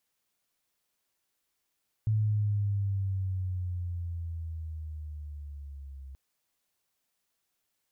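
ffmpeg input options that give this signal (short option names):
-f lavfi -i "aevalsrc='pow(10,(-23-18.5*t/4.08)/20)*sin(2*PI*109*4.08/(-8.5*log(2)/12)*(exp(-8.5*log(2)/12*t/4.08)-1))':d=4.08:s=44100"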